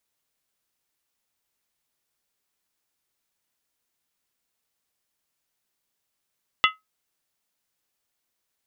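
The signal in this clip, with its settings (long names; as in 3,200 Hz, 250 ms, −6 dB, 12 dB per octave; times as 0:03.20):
struck skin, lowest mode 1,280 Hz, modes 5, decay 0.18 s, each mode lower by 1 dB, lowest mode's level −14.5 dB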